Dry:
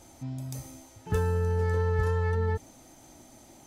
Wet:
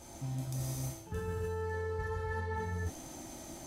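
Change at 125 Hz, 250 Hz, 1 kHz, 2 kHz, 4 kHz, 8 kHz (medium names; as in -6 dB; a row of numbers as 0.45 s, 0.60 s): -8.5 dB, -5.0 dB, -5.0 dB, -4.0 dB, -0.5 dB, +2.5 dB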